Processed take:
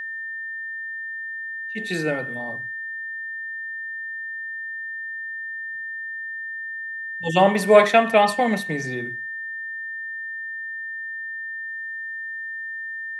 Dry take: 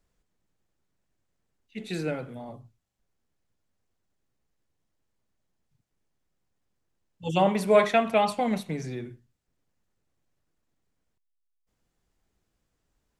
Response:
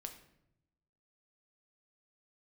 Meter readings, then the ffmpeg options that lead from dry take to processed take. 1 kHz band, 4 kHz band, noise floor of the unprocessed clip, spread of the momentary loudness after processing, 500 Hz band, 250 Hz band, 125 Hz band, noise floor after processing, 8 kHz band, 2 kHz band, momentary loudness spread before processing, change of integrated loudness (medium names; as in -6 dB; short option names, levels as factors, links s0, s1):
+6.5 dB, +7.0 dB, -79 dBFS, 12 LU, +6.5 dB, +4.0 dB, +3.0 dB, -32 dBFS, +7.0 dB, +16.0 dB, 22 LU, +0.5 dB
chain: -af "highpass=50,lowshelf=f=170:g=-8,aeval=exprs='val(0)+0.0158*sin(2*PI*1800*n/s)':c=same,volume=2.24"